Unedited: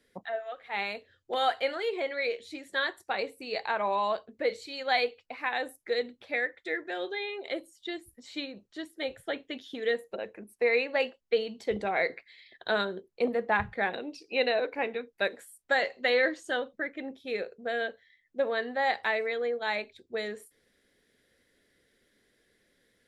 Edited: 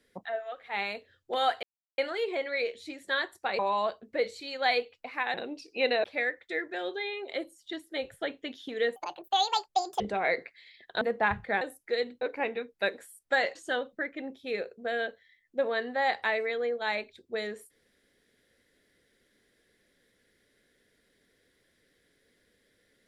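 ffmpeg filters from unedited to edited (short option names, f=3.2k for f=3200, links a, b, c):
-filter_complex "[0:a]asplit=12[a][b][c][d][e][f][g][h][i][j][k][l];[a]atrim=end=1.63,asetpts=PTS-STARTPTS,afade=t=out:st=1.626:d=0.004:c=hsin,apad=pad_dur=0.35[m];[b]atrim=start=1.63:end=3.242,asetpts=PTS-STARTPTS,afade=t=in:d=0.004:c=hsin[n];[c]atrim=start=3.848:end=5.602[o];[d]atrim=start=13.898:end=14.602[p];[e]atrim=start=6.198:end=7.892[q];[f]atrim=start=8.788:end=10.024[r];[g]atrim=start=10.02:end=11.72,asetpts=PTS-STARTPTS,asetrate=71883,aresample=44100[s];[h]atrim=start=11.716:end=12.732[t];[i]atrim=start=13.298:end=13.902[u];[j]atrim=start=5.598:end=6.202[v];[k]atrim=start=14.598:end=15.942[w];[l]atrim=start=16.358[x];[m][n]concat=n=2:v=0:a=1[y];[y][o]acrossfade=d=0.004:c1=hsin:c2=hsin[z];[z][p]acrossfade=d=0.004:c1=hsin:c2=hsin[aa];[aa][q]acrossfade=d=0.004:c1=hsin:c2=hsin[ab];[ab][r]acrossfade=d=0.004:c1=hsin:c2=hsin[ac];[ac][s]acrossfade=d=0.004:c1=hsin:c2=hsin[ad];[ad][t]acrossfade=d=0.004:c1=hsin:c2=hsin[ae];[ae][u]acrossfade=d=0.004:c1=hsin:c2=hsin[af];[af][v]acrossfade=d=0.004:c1=hsin:c2=hsin[ag];[ag][w]acrossfade=d=0.004:c1=hsin:c2=hsin[ah];[ah][x]acrossfade=d=0.004:c1=hsin:c2=hsin"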